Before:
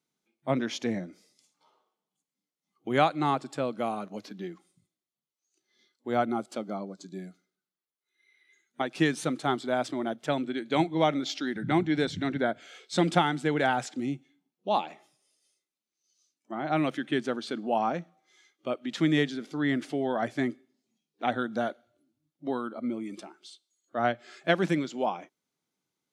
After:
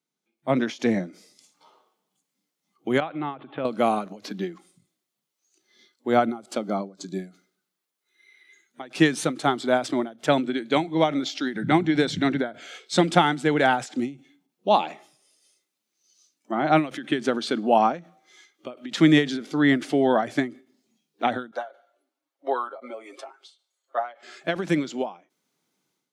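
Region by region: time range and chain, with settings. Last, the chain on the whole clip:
3–3.65 steep low-pass 3500 Hz 72 dB/oct + compressor 3:1, threshold -34 dBFS
21.51–24.23 HPF 520 Hz 24 dB/oct + high shelf 2200 Hz -11.5 dB + comb 7.4 ms, depth 75%
whole clip: HPF 130 Hz; AGC gain up to 13 dB; ending taper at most 180 dB/s; gain -3 dB

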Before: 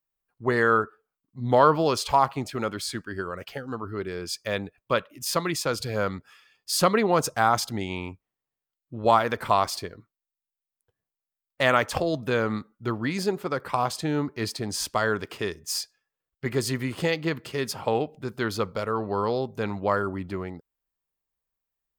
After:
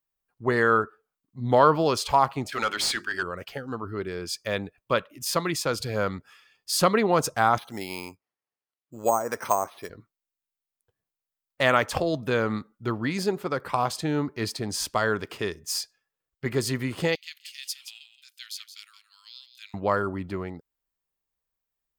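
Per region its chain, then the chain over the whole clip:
2.52–3.23 tilt shelf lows -8 dB, about 1500 Hz + notches 50/100/150/200/250/300/350/400 Hz + overdrive pedal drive 17 dB, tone 3200 Hz, clips at -14 dBFS
7.58–9.9 HPF 380 Hz 6 dB/oct + treble ducked by the level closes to 770 Hz, closed at -17 dBFS + careless resampling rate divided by 6×, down filtered, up hold
17.15–19.74 inverse Chebyshev high-pass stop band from 620 Hz, stop band 70 dB + echo 0.173 s -11 dB
whole clip: dry

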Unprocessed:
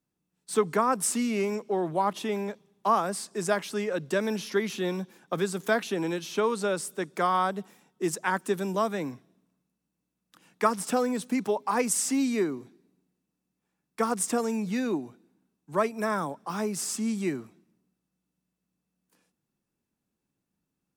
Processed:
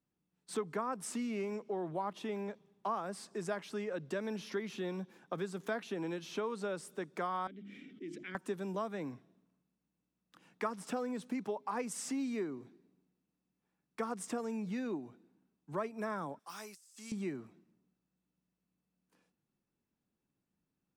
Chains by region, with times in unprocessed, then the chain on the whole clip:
7.47–8.35 vowel filter i + notches 50/100/150/200/250/300/350 Hz + fast leveller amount 70%
16.39–17.12 pre-emphasis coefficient 0.97 + negative-ratio compressor -46 dBFS
whole clip: LPF 3300 Hz 6 dB/oct; compressor 2:1, threshold -37 dBFS; gain -3 dB

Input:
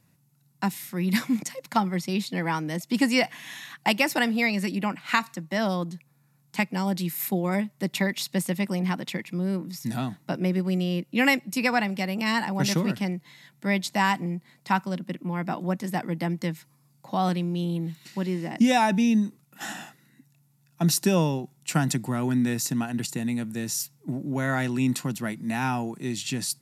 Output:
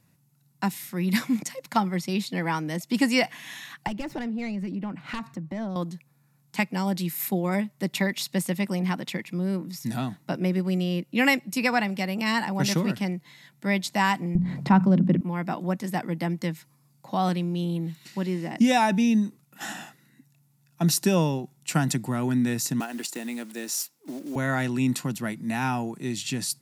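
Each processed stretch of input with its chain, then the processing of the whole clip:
3.87–5.76 self-modulated delay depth 0.19 ms + tilt -3.5 dB/oct + compressor 3:1, threshold -32 dBFS
14.35–15.21 tilt -4.5 dB/oct + notches 60/120/180/240 Hz + fast leveller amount 50%
22.8–24.36 block floating point 5-bit + HPF 270 Hz 24 dB/oct
whole clip: dry

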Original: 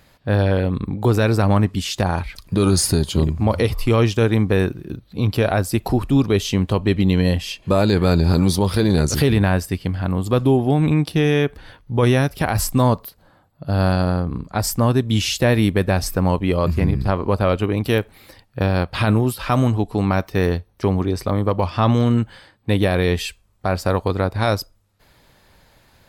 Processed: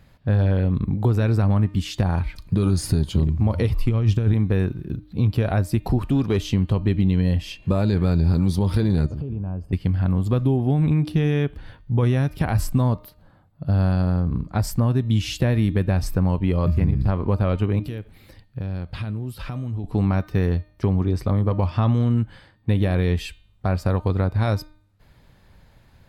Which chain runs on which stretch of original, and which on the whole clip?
3.89–4.34 low shelf 150 Hz +10 dB + negative-ratio compressor -15 dBFS, ratio -0.5
5.98–6.39 low shelf 200 Hz -9 dB + sample leveller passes 1
9.06–9.73 running mean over 23 samples + compressor 12:1, threshold -27 dBFS
17.79–19.84 bell 1000 Hz -4 dB 1.4 oct + compressor, threshold -28 dBFS
whole clip: tone controls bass +9 dB, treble -5 dB; de-hum 304.9 Hz, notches 15; compressor 3:1, threshold -12 dBFS; gain -4.5 dB

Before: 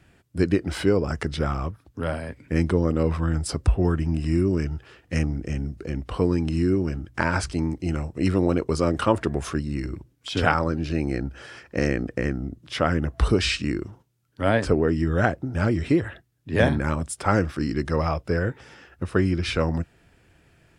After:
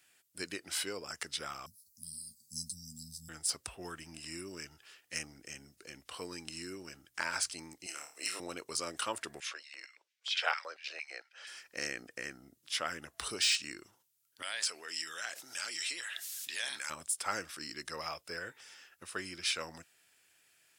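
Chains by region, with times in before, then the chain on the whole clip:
1.66–3.29 Chebyshev band-stop 230–4300 Hz, order 5 + high shelf 6700 Hz +10.5 dB + doubler 13 ms -7 dB
7.86–8.4 HPF 510 Hz + high shelf 6000 Hz +5.5 dB + flutter echo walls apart 4.7 m, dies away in 0.35 s
9.4–11.47 three-band isolator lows -16 dB, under 530 Hz, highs -22 dB, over 5700 Hz + LFO high-pass square 4.4 Hz 500–2100 Hz
14.42–16.9 band-pass 5600 Hz, Q 0.64 + fast leveller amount 70%
whole clip: de-esser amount 55%; differentiator; gain +3.5 dB

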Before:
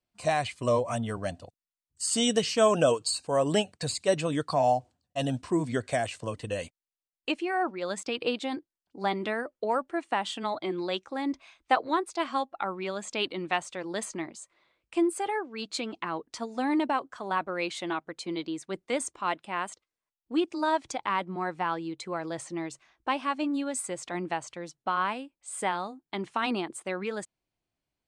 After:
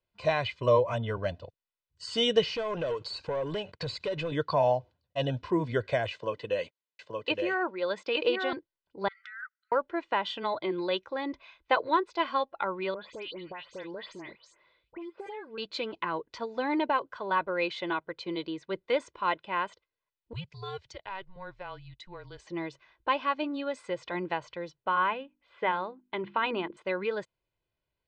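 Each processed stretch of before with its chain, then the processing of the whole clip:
2.42–4.32 compressor, threshold -36 dBFS + sample leveller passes 2
6.12–8.53 HPF 200 Hz + echo 0.87 s -4 dB
9.08–9.72 band shelf 3300 Hz -15.5 dB 1.2 oct + negative-ratio compressor -37 dBFS + brick-wall FIR high-pass 1200 Hz
12.94–15.58 dispersion highs, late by 0.117 s, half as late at 2900 Hz + compressor 12:1, threshold -37 dBFS
20.33–22.47 pre-emphasis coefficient 0.8 + frequency shift -190 Hz
24.8–26.77 LPF 3400 Hz 24 dB/oct + notches 50/100/150/200/250/300/350 Hz
whole clip: LPF 4300 Hz 24 dB/oct; comb 2 ms, depth 55%

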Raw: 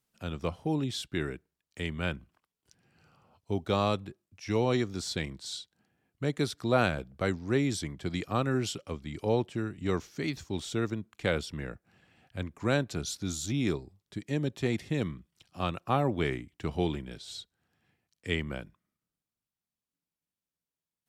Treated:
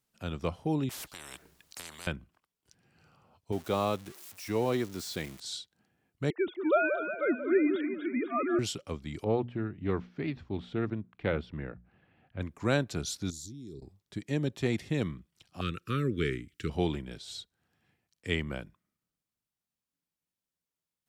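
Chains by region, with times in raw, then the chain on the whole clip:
0.89–2.07 compressor, threshold -32 dBFS + spectral compressor 10:1
3.52–5.4 switching spikes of -29 dBFS + HPF 620 Hz 6 dB/oct + tilt -3 dB/oct
6.3–8.59 sine-wave speech + split-band echo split 1200 Hz, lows 0.182 s, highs 0.249 s, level -7.5 dB
9.24–12.41 air absorption 420 m + notches 60/120/180/240 Hz + Doppler distortion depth 0.11 ms
13.3–13.82 EQ curve 390 Hz 0 dB, 800 Hz -26 dB, 2600 Hz -19 dB, 4300 Hz +1 dB + level quantiser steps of 22 dB
15.61–16.7 Chebyshev band-stop 460–1300 Hz, order 3 + mismatched tape noise reduction encoder only
whole clip: dry

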